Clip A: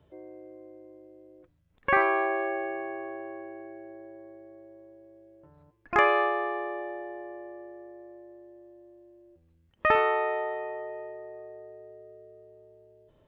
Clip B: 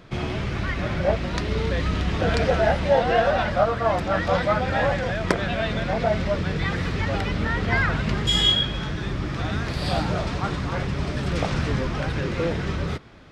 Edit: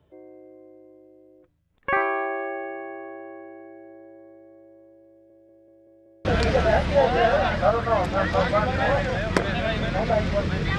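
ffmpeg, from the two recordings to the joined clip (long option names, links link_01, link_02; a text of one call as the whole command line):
ffmpeg -i cue0.wav -i cue1.wav -filter_complex "[0:a]apad=whole_dur=10.78,atrim=end=10.78,asplit=6[link_01][link_02][link_03][link_04][link_05][link_06];[link_01]atrim=end=5.302[link_07];[link_02]atrim=start=5.108:end=5.302[link_08];[link_03]atrim=start=5.108:end=5.302[link_09];[link_04]atrim=start=5.108:end=5.302[link_10];[link_05]atrim=start=5.108:end=5.302[link_11];[link_06]atrim=start=5.108:end=5.302[link_12];[1:a]atrim=start=2.188:end=6.72[link_13];[link_07][link_08]acrossfade=duration=0.004:curve1=hsin:curve2=hsin[link_14];[link_14][link_09]acrossfade=duration=0.004:curve1=hsin:curve2=hsin[link_15];[link_15][link_10]acrossfade=duration=0.004:curve1=hsin:curve2=hsin[link_16];[link_16][link_11]acrossfade=duration=0.004:curve1=hsin:curve2=hsin[link_17];[link_17][link_12]acrossfade=duration=0.004:curve1=hsin:curve2=hsin[link_18];[link_18][link_13]acrossfade=duration=0.004:curve1=hsin:curve2=hsin" out.wav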